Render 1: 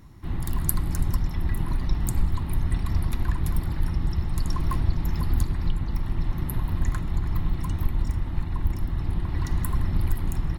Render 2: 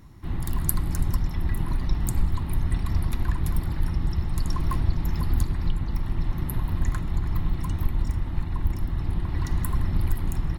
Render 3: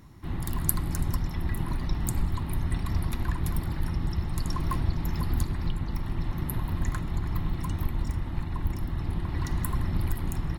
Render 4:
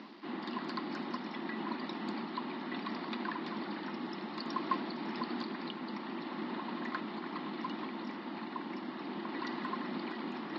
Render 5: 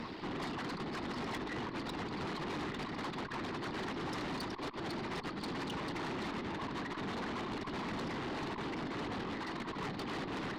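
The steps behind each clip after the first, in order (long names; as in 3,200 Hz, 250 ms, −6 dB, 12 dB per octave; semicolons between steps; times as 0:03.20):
no processing that can be heard
low-shelf EQ 70 Hz −6.5 dB
reversed playback; upward compression, threshold −28 dBFS; reversed playback; bit reduction 9 bits; Chebyshev band-pass filter 210–4,800 Hz, order 5; level +1 dB
random phases in short frames; compressor whose output falls as the input rises −41 dBFS, ratio −0.5; tube saturation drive 44 dB, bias 0.45; level +8 dB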